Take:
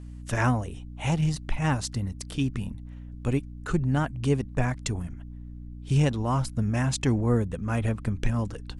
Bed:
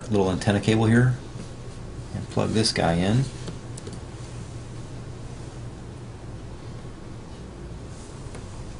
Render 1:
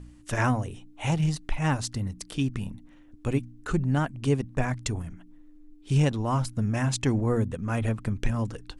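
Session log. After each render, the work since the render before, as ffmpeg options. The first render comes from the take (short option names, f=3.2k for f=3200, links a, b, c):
-af "bandreject=f=60:t=h:w=4,bandreject=f=120:t=h:w=4,bandreject=f=180:t=h:w=4,bandreject=f=240:t=h:w=4"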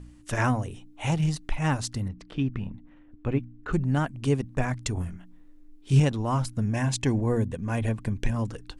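-filter_complex "[0:a]asettb=1/sr,asplit=3[a][b][c];[a]atrim=end=2.084[d];[b]atrim=start=2.08:end=3.73,asetpts=PTS-STARTPTS,afade=t=in:d=0.004:c=qsin,afade=t=out:st=1.646:d=0.004:c=qsin,lowpass=2.5k[e];[c]atrim=start=3.726[f];[d][e]acrossfade=d=0.004:c1=hsin:c2=qsin[g];[g][f]acrossfade=d=0.004:c1=qsin:c2=hsin,asettb=1/sr,asplit=3[h][i][j];[h]atrim=end=4.954[k];[i]atrim=start=4.95:end=6,asetpts=PTS-STARTPTS,afade=t=in:d=0.004:c=qsin,afade=t=out:st=1.046:d=0.004:c=qsin,asplit=2[l][m];[m]adelay=22,volume=-2.5dB[n];[l][n]amix=inputs=2:normalize=0,atrim=end_sample=46305[o];[j]atrim=start=5.996[p];[k][o]acrossfade=d=0.004:c1=hsin:c2=qsin[q];[q][p]acrossfade=d=0.004:c1=qsin:c2=hsin,asettb=1/sr,asplit=3[r][s][t];[r]atrim=end=6.634[u];[s]atrim=start=6.63:end=8.36,asetpts=PTS-STARTPTS,afade=t=in:d=0.004:c=qsin,afade=t=out:st=1.726:d=0.004:c=qsin,asuperstop=centerf=1300:order=4:qfactor=6.1[v];[t]atrim=start=8.356[w];[u][v]acrossfade=d=0.004:c1=hsin:c2=qsin[x];[x][w]acrossfade=d=0.004:c1=qsin:c2=hsin"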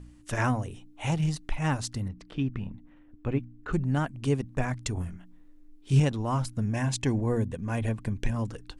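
-af "volume=-2dB"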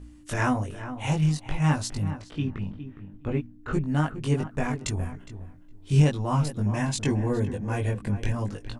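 -filter_complex "[0:a]asplit=2[a][b];[b]adelay=20,volume=-2dB[c];[a][c]amix=inputs=2:normalize=0,asplit=2[d][e];[e]adelay=412,lowpass=f=1.8k:p=1,volume=-11dB,asplit=2[f][g];[g]adelay=412,lowpass=f=1.8k:p=1,volume=0.16[h];[d][f][h]amix=inputs=3:normalize=0"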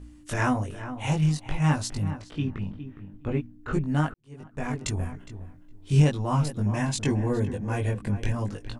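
-filter_complex "[0:a]asplit=2[a][b];[a]atrim=end=4.14,asetpts=PTS-STARTPTS,afade=t=out:st=4.136:d=0.004:c=hsin[c];[b]atrim=start=4.14,asetpts=PTS-STARTPTS,afade=t=in:d=0.62:c=qua[d];[c][d]concat=n=2:v=0:a=1"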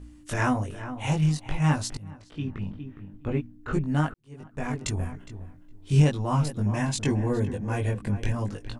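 -filter_complex "[0:a]asplit=2[a][b];[a]atrim=end=1.97,asetpts=PTS-STARTPTS,afade=t=out:st=1.966:d=0.004:c=hsin:silence=0.11885[c];[b]atrim=start=1.97,asetpts=PTS-STARTPTS,afade=t=in:d=0.72:silence=0.11885[d];[c][d]concat=n=2:v=0:a=1"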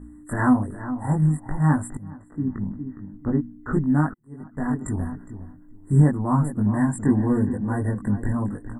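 -af "afftfilt=real='re*(1-between(b*sr/4096,2000,7300))':imag='im*(1-between(b*sr/4096,2000,7300))':win_size=4096:overlap=0.75,equalizer=f=250:t=o:w=1:g=10,equalizer=f=500:t=o:w=1:g=-4,equalizer=f=1k:t=o:w=1:g=4"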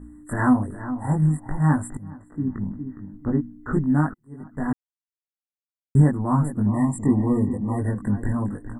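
-filter_complex "[0:a]asettb=1/sr,asplit=3[a][b][c];[a]atrim=end=6.694[d];[b]atrim=start=6.69:end=7.79,asetpts=PTS-STARTPTS,afade=t=in:d=0.004:c=qsin,afade=t=out:st=1.096:d=0.004:c=qsin,asuperstop=centerf=1500:order=12:qfactor=2.4[e];[c]atrim=start=7.786[f];[d][e]acrossfade=d=0.004:c1=hsin:c2=qsin[g];[g][f]acrossfade=d=0.004:c1=qsin:c2=hsin,asplit=3[h][i][j];[h]atrim=end=4.73,asetpts=PTS-STARTPTS,afade=t=out:st=4.726:d=0.004:c=hsin[k];[i]atrim=start=4.73:end=5.95,asetpts=PTS-STARTPTS,volume=0[l];[j]atrim=start=5.95,asetpts=PTS-STARTPTS,afade=t=in:d=0.004:c=hsin[m];[k][l][m]concat=n=3:v=0:a=1"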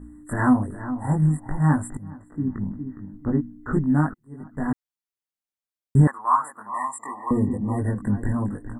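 -filter_complex "[0:a]asettb=1/sr,asplit=3[a][b][c];[a]atrim=end=6.074[d];[b]atrim=start=6.07:end=7.31,asetpts=PTS-STARTPTS,afade=t=in:d=0.004:c=qsin,afade=t=out:st=1.236:d=0.004:c=qsin,highpass=f=1.1k:t=q:w=3.8[e];[c]atrim=start=7.306[f];[d][e]acrossfade=d=0.004:c1=hsin:c2=qsin[g];[g][f]acrossfade=d=0.004:c1=qsin:c2=hsin"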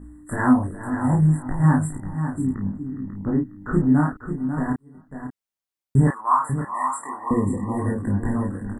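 -filter_complex "[0:a]asplit=2[a][b];[b]adelay=31,volume=-4dB[c];[a][c]amix=inputs=2:normalize=0,asplit=2[d][e];[e]aecho=0:1:543:0.355[f];[d][f]amix=inputs=2:normalize=0"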